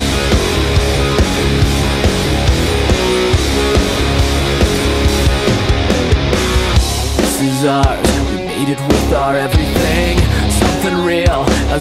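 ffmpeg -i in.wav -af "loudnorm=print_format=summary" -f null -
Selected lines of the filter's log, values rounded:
Input Integrated:    -13.5 LUFS
Input True Peak:      -2.3 dBTP
Input LRA:             0.8 LU
Input Threshold:     -23.5 LUFS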